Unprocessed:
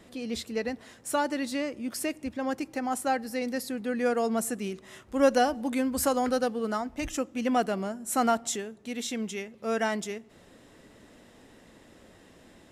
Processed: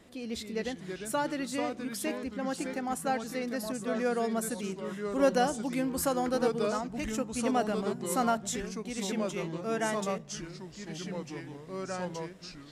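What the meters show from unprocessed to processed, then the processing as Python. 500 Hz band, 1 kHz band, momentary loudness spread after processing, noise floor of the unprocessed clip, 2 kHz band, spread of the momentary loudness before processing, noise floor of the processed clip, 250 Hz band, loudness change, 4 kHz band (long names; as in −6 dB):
−2.0 dB, −3.0 dB, 11 LU, −56 dBFS, −2.5 dB, 9 LU, −48 dBFS, −2.0 dB, −3.0 dB, −2.0 dB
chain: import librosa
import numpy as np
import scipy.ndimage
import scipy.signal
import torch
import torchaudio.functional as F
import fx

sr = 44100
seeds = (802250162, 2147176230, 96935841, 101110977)

y = fx.echo_pitch(x, sr, ms=224, semitones=-3, count=3, db_per_echo=-6.0)
y = y * 10.0 ** (-3.5 / 20.0)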